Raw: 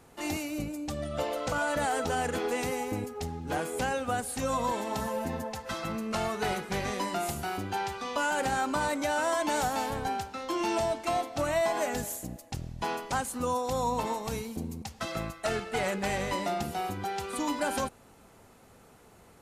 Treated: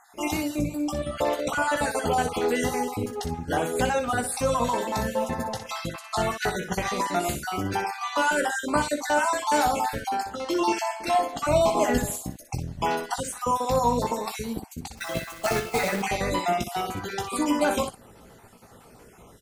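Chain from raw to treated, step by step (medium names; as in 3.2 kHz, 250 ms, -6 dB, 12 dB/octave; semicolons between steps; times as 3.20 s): random holes in the spectrogram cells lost 40%; 11.51–12.07 s: bass shelf 320 Hz +9.5 dB; 14.97–16.02 s: companded quantiser 4-bit; early reflections 17 ms -8 dB, 61 ms -9 dB; trim +6 dB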